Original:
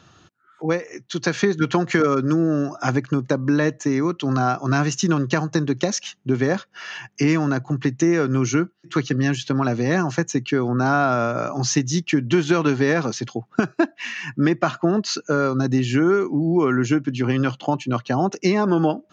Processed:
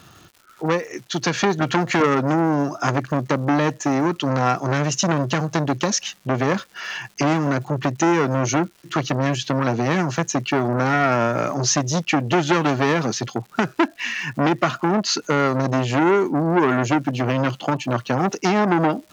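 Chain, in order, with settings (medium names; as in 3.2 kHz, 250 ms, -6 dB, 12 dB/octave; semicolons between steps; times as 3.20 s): crackle 350 per s -43 dBFS; transformer saturation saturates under 1.5 kHz; trim +4 dB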